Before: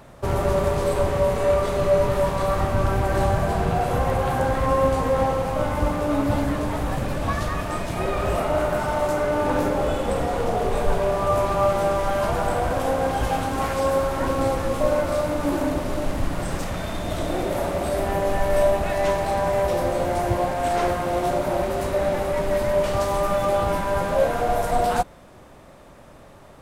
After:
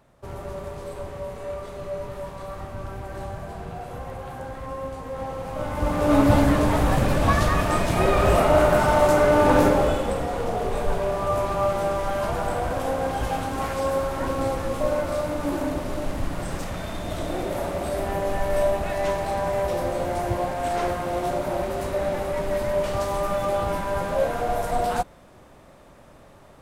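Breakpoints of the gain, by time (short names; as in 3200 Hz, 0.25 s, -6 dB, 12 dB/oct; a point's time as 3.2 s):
5.04 s -13 dB
5.76 s -4 dB
6.15 s +5 dB
9.67 s +5 dB
10.19 s -3 dB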